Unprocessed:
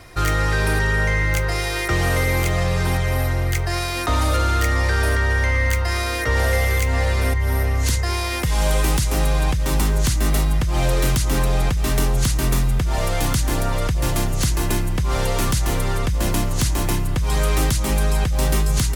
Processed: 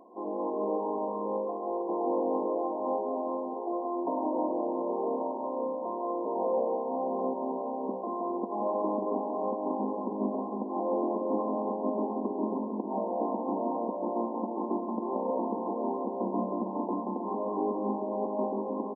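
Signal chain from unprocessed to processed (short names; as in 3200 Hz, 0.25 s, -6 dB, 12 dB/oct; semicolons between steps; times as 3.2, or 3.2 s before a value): self-modulated delay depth 0.13 ms; bouncing-ball echo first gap 0.18 s, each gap 0.75×, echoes 5; FFT band-pass 190–1100 Hz; gain -5 dB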